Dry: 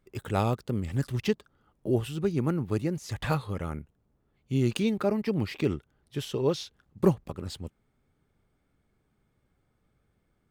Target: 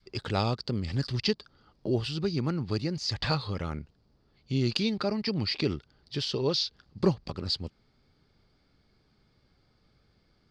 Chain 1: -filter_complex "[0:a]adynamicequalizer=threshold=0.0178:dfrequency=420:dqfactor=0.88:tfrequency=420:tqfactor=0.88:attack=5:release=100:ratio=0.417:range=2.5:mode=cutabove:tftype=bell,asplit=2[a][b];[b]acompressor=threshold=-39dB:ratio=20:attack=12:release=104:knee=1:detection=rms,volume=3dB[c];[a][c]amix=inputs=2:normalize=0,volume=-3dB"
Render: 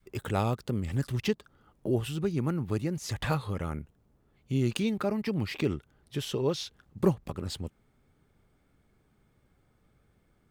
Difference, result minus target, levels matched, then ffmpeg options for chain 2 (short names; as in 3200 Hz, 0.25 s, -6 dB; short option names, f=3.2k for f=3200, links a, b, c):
4000 Hz band -7.5 dB
-filter_complex "[0:a]adynamicequalizer=threshold=0.0178:dfrequency=420:dqfactor=0.88:tfrequency=420:tqfactor=0.88:attack=5:release=100:ratio=0.417:range=2.5:mode=cutabove:tftype=bell,lowpass=f=4.7k:t=q:w=8.6,asplit=2[a][b];[b]acompressor=threshold=-39dB:ratio=20:attack=12:release=104:knee=1:detection=rms,volume=3dB[c];[a][c]amix=inputs=2:normalize=0,volume=-3dB"